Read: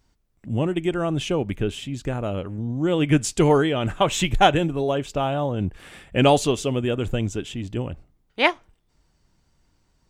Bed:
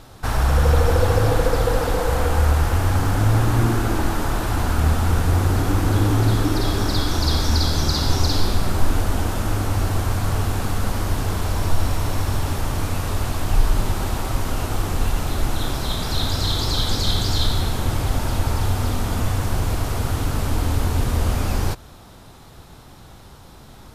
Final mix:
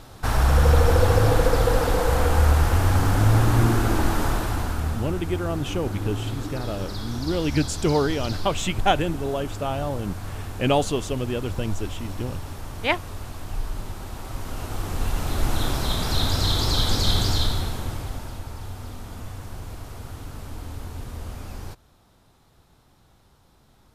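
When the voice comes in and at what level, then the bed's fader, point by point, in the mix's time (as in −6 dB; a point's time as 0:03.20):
4.45 s, −4.0 dB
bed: 0:04.27 −0.5 dB
0:05.15 −12 dB
0:14.07 −12 dB
0:15.56 −0.5 dB
0:17.24 −0.5 dB
0:18.46 −14.5 dB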